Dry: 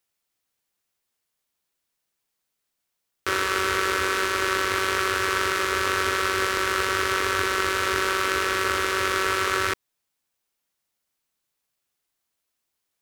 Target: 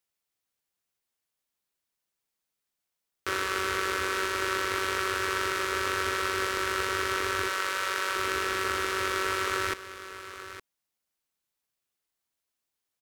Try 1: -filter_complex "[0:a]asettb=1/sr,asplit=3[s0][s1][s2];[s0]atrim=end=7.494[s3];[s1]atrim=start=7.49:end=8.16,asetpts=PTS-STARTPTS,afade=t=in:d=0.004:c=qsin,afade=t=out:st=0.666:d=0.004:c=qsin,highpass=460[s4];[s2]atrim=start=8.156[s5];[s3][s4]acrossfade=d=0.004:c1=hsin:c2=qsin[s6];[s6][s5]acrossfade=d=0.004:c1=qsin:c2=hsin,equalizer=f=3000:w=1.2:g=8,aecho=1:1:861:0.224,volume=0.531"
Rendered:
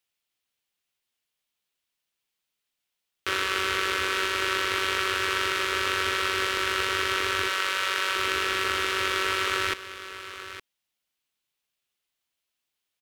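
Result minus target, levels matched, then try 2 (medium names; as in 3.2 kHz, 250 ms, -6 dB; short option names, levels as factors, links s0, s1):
4 kHz band +3.5 dB
-filter_complex "[0:a]asettb=1/sr,asplit=3[s0][s1][s2];[s0]atrim=end=7.494[s3];[s1]atrim=start=7.49:end=8.16,asetpts=PTS-STARTPTS,afade=t=in:d=0.004:c=qsin,afade=t=out:st=0.666:d=0.004:c=qsin,highpass=460[s4];[s2]atrim=start=8.156[s5];[s3][s4]acrossfade=d=0.004:c1=hsin:c2=qsin[s6];[s6][s5]acrossfade=d=0.004:c1=qsin:c2=hsin,aecho=1:1:861:0.224,volume=0.531"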